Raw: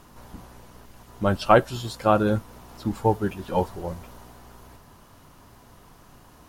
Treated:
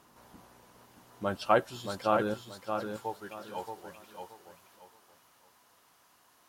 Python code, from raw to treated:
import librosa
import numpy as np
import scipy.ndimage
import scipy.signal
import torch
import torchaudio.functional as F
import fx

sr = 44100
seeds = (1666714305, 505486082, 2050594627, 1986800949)

y = fx.highpass(x, sr, hz=fx.steps((0.0, 270.0), (2.34, 1300.0)), slope=6)
y = fx.echo_feedback(y, sr, ms=626, feedback_pct=26, wet_db=-6.0)
y = F.gain(torch.from_numpy(y), -7.5).numpy()